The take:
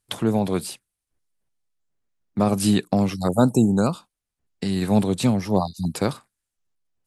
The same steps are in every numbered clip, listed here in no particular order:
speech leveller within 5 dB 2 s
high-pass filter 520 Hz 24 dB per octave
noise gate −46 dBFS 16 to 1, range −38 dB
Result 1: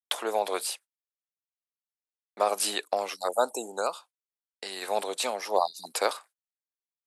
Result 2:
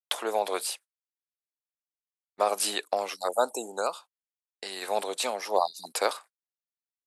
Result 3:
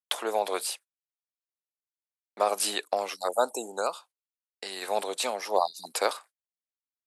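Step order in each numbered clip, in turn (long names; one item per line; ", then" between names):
speech leveller, then noise gate, then high-pass filter
speech leveller, then high-pass filter, then noise gate
noise gate, then speech leveller, then high-pass filter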